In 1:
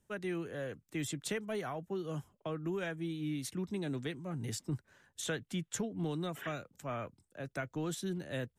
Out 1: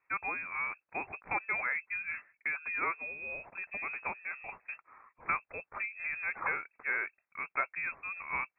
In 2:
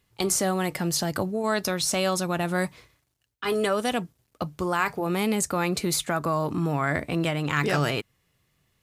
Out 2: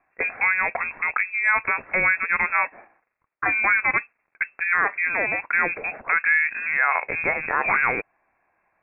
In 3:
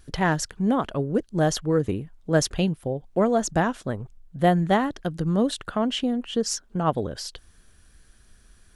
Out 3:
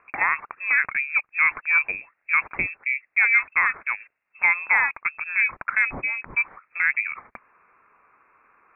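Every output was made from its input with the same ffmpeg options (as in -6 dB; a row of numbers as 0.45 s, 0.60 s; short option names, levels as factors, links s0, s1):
-af "highpass=610,lowpass=f=2400:t=q:w=0.5098,lowpass=f=2400:t=q:w=0.6013,lowpass=f=2400:t=q:w=0.9,lowpass=f=2400:t=q:w=2.563,afreqshift=-2800,alimiter=level_in=7.08:limit=0.891:release=50:level=0:latency=1,volume=0.398"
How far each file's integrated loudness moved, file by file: +3.5 LU, +4.5 LU, +3.0 LU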